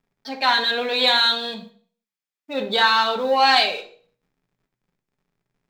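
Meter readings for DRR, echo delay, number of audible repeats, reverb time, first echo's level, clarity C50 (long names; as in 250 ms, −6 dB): 5.0 dB, no echo audible, no echo audible, 0.45 s, no echo audible, 11.5 dB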